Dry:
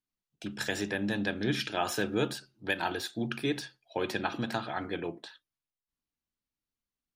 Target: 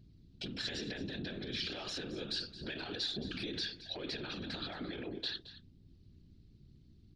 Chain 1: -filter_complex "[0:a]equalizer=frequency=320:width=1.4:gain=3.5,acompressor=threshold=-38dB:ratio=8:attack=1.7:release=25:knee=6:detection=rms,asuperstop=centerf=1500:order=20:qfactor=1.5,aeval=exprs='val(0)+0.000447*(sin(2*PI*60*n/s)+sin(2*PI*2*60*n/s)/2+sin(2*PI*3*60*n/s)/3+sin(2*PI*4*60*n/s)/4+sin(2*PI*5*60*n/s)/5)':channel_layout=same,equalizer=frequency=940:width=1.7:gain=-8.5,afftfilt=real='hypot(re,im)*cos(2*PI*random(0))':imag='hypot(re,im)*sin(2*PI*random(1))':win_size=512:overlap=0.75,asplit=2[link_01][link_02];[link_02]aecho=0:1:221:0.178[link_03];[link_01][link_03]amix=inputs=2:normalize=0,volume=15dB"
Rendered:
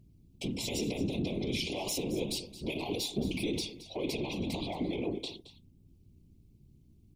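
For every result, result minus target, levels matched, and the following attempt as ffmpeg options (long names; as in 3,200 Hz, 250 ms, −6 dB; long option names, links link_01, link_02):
downward compressor: peak gain reduction −9 dB; 4,000 Hz band −5.0 dB; 2,000 Hz band −4.0 dB
-filter_complex "[0:a]equalizer=frequency=320:width=1.4:gain=3.5,acompressor=threshold=-48.5dB:ratio=8:attack=1.7:release=25:knee=6:detection=rms,asuperstop=centerf=1500:order=20:qfactor=1.5,aeval=exprs='val(0)+0.000447*(sin(2*PI*60*n/s)+sin(2*PI*2*60*n/s)/2+sin(2*PI*3*60*n/s)/3+sin(2*PI*4*60*n/s)/4+sin(2*PI*5*60*n/s)/5)':channel_layout=same,equalizer=frequency=940:width=1.7:gain=-8.5,afftfilt=real='hypot(re,im)*cos(2*PI*random(0))':imag='hypot(re,im)*sin(2*PI*random(1))':win_size=512:overlap=0.75,asplit=2[link_01][link_02];[link_02]aecho=0:1:221:0.178[link_03];[link_01][link_03]amix=inputs=2:normalize=0,volume=15dB"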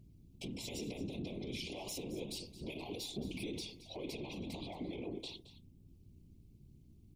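4,000 Hz band −4.5 dB; 2,000 Hz band −4.0 dB
-filter_complex "[0:a]equalizer=frequency=320:width=1.4:gain=3.5,acompressor=threshold=-48.5dB:ratio=8:attack=1.7:release=25:knee=6:detection=rms,asuperstop=centerf=1500:order=20:qfactor=1.5,aeval=exprs='val(0)+0.000447*(sin(2*PI*60*n/s)+sin(2*PI*2*60*n/s)/2+sin(2*PI*3*60*n/s)/3+sin(2*PI*4*60*n/s)/4+sin(2*PI*5*60*n/s)/5)':channel_layout=same,lowpass=frequency=4300:width_type=q:width=3.6,equalizer=frequency=940:width=1.7:gain=-8.5,afftfilt=real='hypot(re,im)*cos(2*PI*random(0))':imag='hypot(re,im)*sin(2*PI*random(1))':win_size=512:overlap=0.75,asplit=2[link_01][link_02];[link_02]aecho=0:1:221:0.178[link_03];[link_01][link_03]amix=inputs=2:normalize=0,volume=15dB"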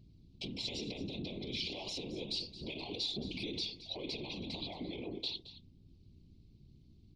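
2,000 Hz band −4.5 dB
-filter_complex "[0:a]equalizer=frequency=320:width=1.4:gain=3.5,acompressor=threshold=-48.5dB:ratio=8:attack=1.7:release=25:knee=6:detection=rms,aeval=exprs='val(0)+0.000447*(sin(2*PI*60*n/s)+sin(2*PI*2*60*n/s)/2+sin(2*PI*3*60*n/s)/3+sin(2*PI*4*60*n/s)/4+sin(2*PI*5*60*n/s)/5)':channel_layout=same,lowpass=frequency=4300:width_type=q:width=3.6,equalizer=frequency=940:width=1.7:gain=-8.5,afftfilt=real='hypot(re,im)*cos(2*PI*random(0))':imag='hypot(re,im)*sin(2*PI*random(1))':win_size=512:overlap=0.75,asplit=2[link_01][link_02];[link_02]aecho=0:1:221:0.178[link_03];[link_01][link_03]amix=inputs=2:normalize=0,volume=15dB"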